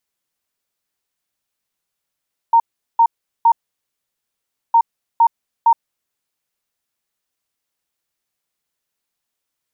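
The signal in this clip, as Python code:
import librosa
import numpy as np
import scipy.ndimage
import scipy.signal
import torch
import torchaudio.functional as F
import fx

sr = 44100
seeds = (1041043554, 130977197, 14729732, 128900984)

y = fx.beep_pattern(sr, wave='sine', hz=923.0, on_s=0.07, off_s=0.39, beeps=3, pause_s=1.22, groups=2, level_db=-7.5)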